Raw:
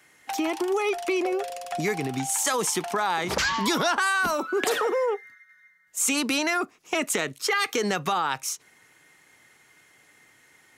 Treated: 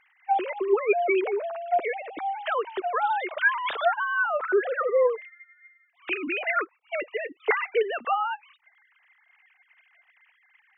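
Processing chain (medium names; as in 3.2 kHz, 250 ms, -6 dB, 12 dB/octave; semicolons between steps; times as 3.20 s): formants replaced by sine waves; 3.93–6.07 s: treble shelf 3 kHz -11.5 dB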